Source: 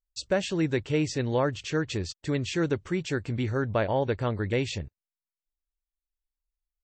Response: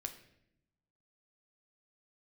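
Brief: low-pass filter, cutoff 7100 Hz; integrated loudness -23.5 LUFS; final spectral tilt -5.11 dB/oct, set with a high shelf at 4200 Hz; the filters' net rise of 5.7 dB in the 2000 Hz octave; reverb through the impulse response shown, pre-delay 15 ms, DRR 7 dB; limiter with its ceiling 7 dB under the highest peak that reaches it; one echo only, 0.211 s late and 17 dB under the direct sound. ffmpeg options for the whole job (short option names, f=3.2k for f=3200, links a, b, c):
-filter_complex "[0:a]lowpass=7.1k,equalizer=f=2k:t=o:g=8.5,highshelf=f=4.2k:g=-5.5,alimiter=limit=-17.5dB:level=0:latency=1,aecho=1:1:211:0.141,asplit=2[a][b];[1:a]atrim=start_sample=2205,adelay=15[c];[b][c]afir=irnorm=-1:irlink=0,volume=-5dB[d];[a][d]amix=inputs=2:normalize=0,volume=4.5dB"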